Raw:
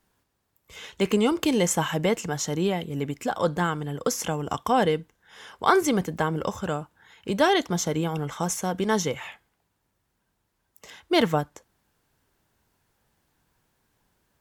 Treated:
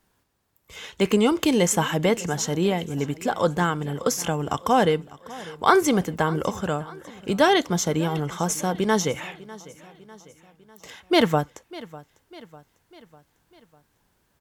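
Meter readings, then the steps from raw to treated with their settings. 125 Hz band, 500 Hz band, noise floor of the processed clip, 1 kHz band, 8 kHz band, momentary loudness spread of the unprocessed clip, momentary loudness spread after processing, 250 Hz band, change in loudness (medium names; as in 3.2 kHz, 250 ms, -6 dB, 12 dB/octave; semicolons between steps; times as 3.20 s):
+2.5 dB, +2.5 dB, -69 dBFS, +2.5 dB, +2.5 dB, 10 LU, 19 LU, +2.5 dB, +2.5 dB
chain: feedback delay 599 ms, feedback 52%, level -19.5 dB; trim +2.5 dB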